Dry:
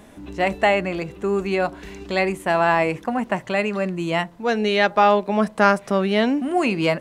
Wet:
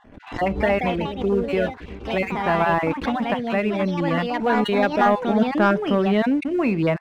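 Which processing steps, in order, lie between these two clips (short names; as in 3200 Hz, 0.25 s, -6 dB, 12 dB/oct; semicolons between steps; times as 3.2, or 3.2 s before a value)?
random spectral dropouts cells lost 22%; LPF 2600 Hz 12 dB/oct; low shelf 180 Hz +9.5 dB; sample leveller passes 1; echoes that change speed 0.281 s, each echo +3 st, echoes 2, each echo -6 dB; backwards sustainer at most 140 dB/s; gain -5.5 dB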